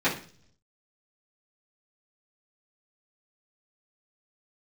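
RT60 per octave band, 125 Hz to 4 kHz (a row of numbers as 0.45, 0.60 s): 0.95, 0.70, 0.50, 0.40, 0.45, 0.55 s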